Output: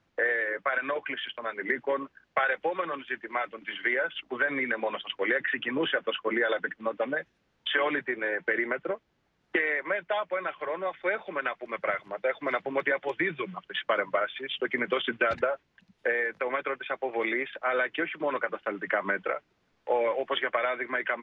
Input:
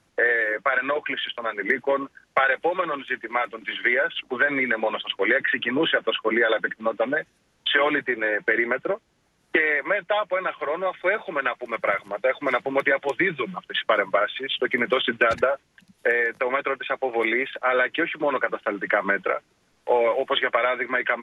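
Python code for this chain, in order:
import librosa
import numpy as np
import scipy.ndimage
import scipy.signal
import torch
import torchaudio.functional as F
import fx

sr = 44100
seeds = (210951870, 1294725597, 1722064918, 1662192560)

y = scipy.signal.sosfilt(scipy.signal.butter(2, 4100.0, 'lowpass', fs=sr, output='sos'), x)
y = F.gain(torch.from_numpy(y), -6.0).numpy()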